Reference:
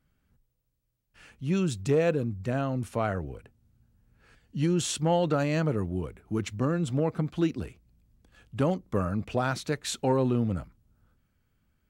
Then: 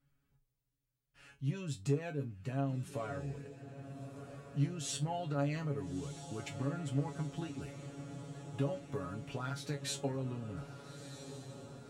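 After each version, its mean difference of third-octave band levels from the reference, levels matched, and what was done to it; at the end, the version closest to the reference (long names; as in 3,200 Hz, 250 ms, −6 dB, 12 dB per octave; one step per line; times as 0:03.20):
7.0 dB: downward compressor, threshold −28 dBFS, peak gain reduction 8.5 dB
tuned comb filter 140 Hz, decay 0.16 s, harmonics all, mix 100%
feedback delay with all-pass diffusion 1,325 ms, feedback 62%, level −11 dB
level +2.5 dB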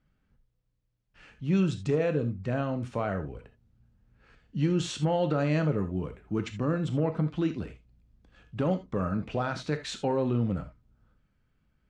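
3.5 dB: brickwall limiter −17.5 dBFS, peak gain reduction 4.5 dB
high-frequency loss of the air 110 metres
reverb whose tail is shaped and stops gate 100 ms flat, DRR 7.5 dB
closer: second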